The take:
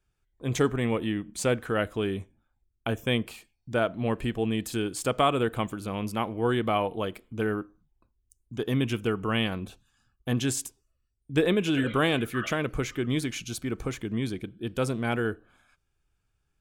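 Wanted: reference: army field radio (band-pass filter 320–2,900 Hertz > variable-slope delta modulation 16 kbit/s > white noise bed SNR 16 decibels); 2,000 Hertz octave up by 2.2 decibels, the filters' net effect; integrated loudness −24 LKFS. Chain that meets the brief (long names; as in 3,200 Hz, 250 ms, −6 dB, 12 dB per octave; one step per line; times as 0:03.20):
band-pass filter 320–2,900 Hz
parametric band 2,000 Hz +4 dB
variable-slope delta modulation 16 kbit/s
white noise bed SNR 16 dB
level +8.5 dB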